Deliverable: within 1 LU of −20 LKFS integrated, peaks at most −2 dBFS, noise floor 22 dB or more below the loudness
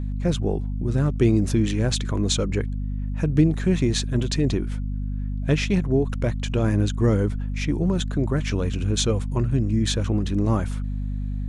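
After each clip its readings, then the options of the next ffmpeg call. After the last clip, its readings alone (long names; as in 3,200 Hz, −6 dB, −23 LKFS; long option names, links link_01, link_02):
mains hum 50 Hz; hum harmonics up to 250 Hz; level of the hum −24 dBFS; integrated loudness −23.5 LKFS; sample peak −6.5 dBFS; target loudness −20.0 LKFS
→ -af "bandreject=frequency=50:width_type=h:width=6,bandreject=frequency=100:width_type=h:width=6,bandreject=frequency=150:width_type=h:width=6,bandreject=frequency=200:width_type=h:width=6,bandreject=frequency=250:width_type=h:width=6"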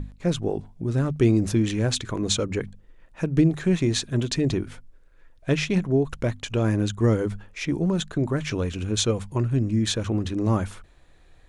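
mains hum none found; integrated loudness −24.5 LKFS; sample peak −7.5 dBFS; target loudness −20.0 LKFS
→ -af "volume=4.5dB"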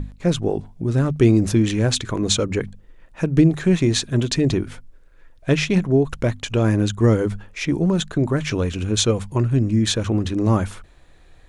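integrated loudness −20.0 LKFS; sample peak −3.0 dBFS; background noise floor −49 dBFS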